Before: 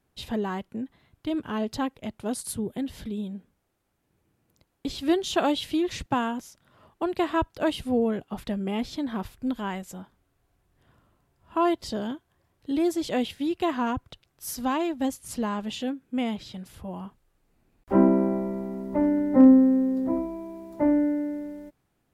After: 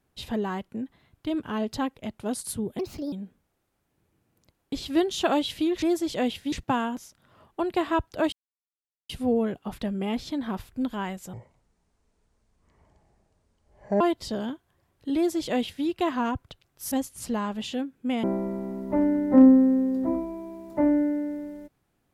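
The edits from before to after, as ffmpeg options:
ffmpeg -i in.wav -filter_complex "[0:a]asplit=10[link_01][link_02][link_03][link_04][link_05][link_06][link_07][link_08][link_09][link_10];[link_01]atrim=end=2.794[link_11];[link_02]atrim=start=2.79:end=3.25,asetpts=PTS-STARTPTS,asetrate=60858,aresample=44100,atrim=end_sample=14700,asetpts=PTS-STARTPTS[link_12];[link_03]atrim=start=3.246:end=5.952[link_13];[link_04]atrim=start=12.768:end=13.472[link_14];[link_05]atrim=start=5.948:end=7.75,asetpts=PTS-STARTPTS,afade=type=out:start_time=1.798:duration=0.004:curve=hsin,apad=pad_dur=0.77[link_15];[link_06]atrim=start=7.75:end=9.994,asetpts=PTS-STARTPTS,afade=type=in:duration=0.004:curve=hsin[link_16];[link_07]atrim=start=9.99:end=11.62,asetpts=PTS-STARTPTS,asetrate=26901,aresample=44100[link_17];[link_08]atrim=start=11.616:end=14.532[link_18];[link_09]atrim=start=14.998:end=16.322[link_19];[link_10]atrim=start=18.258[link_20];[link_11][link_12]acrossfade=duration=0.004:curve1=hsin:curve2=hsin[link_21];[link_21][link_13]acrossfade=duration=0.004:curve1=hsin:curve2=hsin[link_22];[link_22][link_14]acrossfade=duration=0.004:curve1=hsin:curve2=hsin[link_23];[link_15][link_16]concat=n=2:v=0:a=1[link_24];[link_23][link_24]acrossfade=duration=0.004:curve1=hsin:curve2=hsin[link_25];[link_25][link_17]acrossfade=duration=0.004:curve1=hsin:curve2=hsin[link_26];[link_26][link_18]acrossfade=duration=0.004:curve1=hsin:curve2=hsin[link_27];[link_27][link_19]acrossfade=duration=0.004:curve1=hsin:curve2=hsin[link_28];[link_28][link_20]acrossfade=duration=0.004:curve1=hsin:curve2=hsin" out.wav

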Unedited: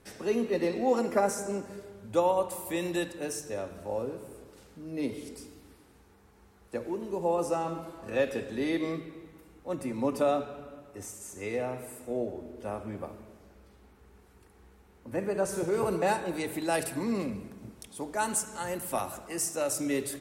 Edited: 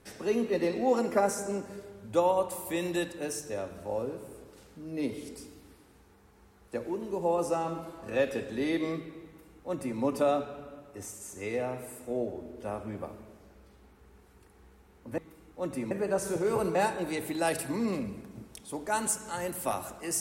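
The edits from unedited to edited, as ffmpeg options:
ffmpeg -i in.wav -filter_complex "[0:a]asplit=3[link_01][link_02][link_03];[link_01]atrim=end=15.182[link_04];[link_02]atrim=start=9.258:end=9.992[link_05];[link_03]atrim=start=15.178[link_06];[link_04][link_05]acrossfade=duration=0.004:curve1=hsin:curve2=hsin[link_07];[link_07][link_06]acrossfade=duration=0.004:curve1=hsin:curve2=hsin" out.wav

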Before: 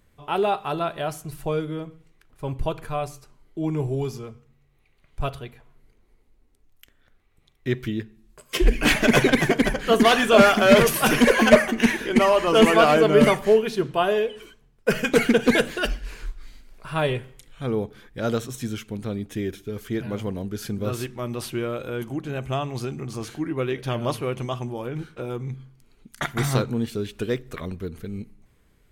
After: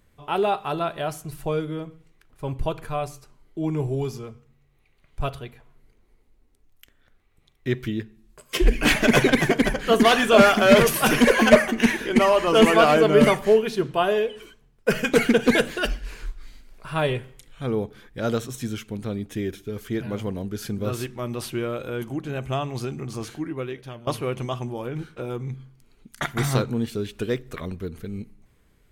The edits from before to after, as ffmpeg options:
ffmpeg -i in.wav -filter_complex "[0:a]asplit=2[link_01][link_02];[link_01]atrim=end=24.07,asetpts=PTS-STARTPTS,afade=type=out:start_time=23.22:duration=0.85:silence=0.105925[link_03];[link_02]atrim=start=24.07,asetpts=PTS-STARTPTS,afade=type=in:duration=0.004:curve=hsin:silence=0.105925[link_04];[link_03][link_04]concat=n=2:v=0:a=1" out.wav

